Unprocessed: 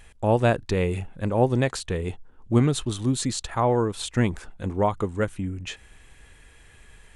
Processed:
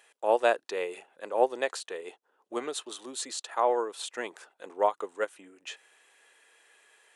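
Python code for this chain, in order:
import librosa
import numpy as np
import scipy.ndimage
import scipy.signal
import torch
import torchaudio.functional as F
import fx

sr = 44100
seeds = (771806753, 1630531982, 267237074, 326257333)

y = scipy.signal.sosfilt(scipy.signal.butter(4, 420.0, 'highpass', fs=sr, output='sos'), x)
y = fx.notch(y, sr, hz=2200.0, q=19.0)
y = fx.upward_expand(y, sr, threshold_db=-29.0, expansion=1.5)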